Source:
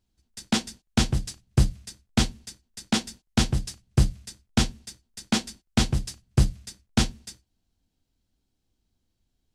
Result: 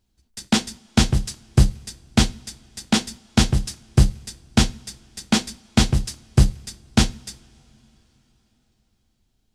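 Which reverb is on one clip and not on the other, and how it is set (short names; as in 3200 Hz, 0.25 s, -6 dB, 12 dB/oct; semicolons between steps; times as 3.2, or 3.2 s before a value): two-slope reverb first 0.43 s, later 4.4 s, from -18 dB, DRR 18 dB; gain +5 dB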